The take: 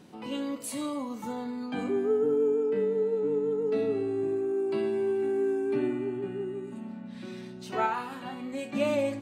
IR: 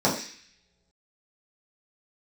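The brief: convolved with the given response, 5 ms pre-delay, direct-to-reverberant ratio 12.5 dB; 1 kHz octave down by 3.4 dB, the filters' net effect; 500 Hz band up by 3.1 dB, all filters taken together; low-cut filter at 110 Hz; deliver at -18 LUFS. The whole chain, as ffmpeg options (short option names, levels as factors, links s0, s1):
-filter_complex "[0:a]highpass=110,equalizer=f=500:t=o:g=5,equalizer=f=1000:t=o:g=-6,asplit=2[s0][s1];[1:a]atrim=start_sample=2205,adelay=5[s2];[s1][s2]afir=irnorm=-1:irlink=0,volume=0.0376[s3];[s0][s3]amix=inputs=2:normalize=0,volume=2.37"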